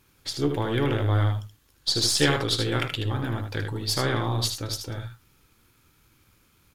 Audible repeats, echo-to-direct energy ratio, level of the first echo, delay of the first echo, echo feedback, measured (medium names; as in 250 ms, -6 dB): 1, -6.5 dB, -6.5 dB, 77 ms, no regular repeats